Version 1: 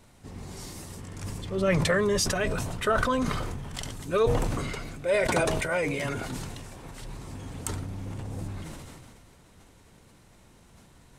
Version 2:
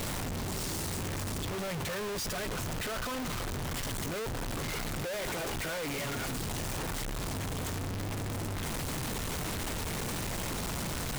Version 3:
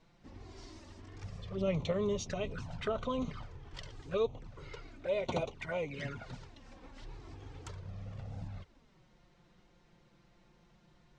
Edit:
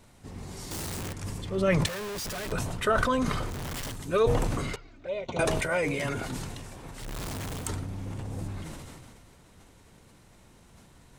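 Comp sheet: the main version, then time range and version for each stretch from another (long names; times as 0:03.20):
1
0:00.71–0:01.13: punch in from 2
0:01.86–0:02.52: punch in from 2
0:03.52–0:03.92: punch in from 2, crossfade 0.10 s
0:04.76–0:05.39: punch in from 3
0:07.06–0:07.63: punch in from 2, crossfade 0.16 s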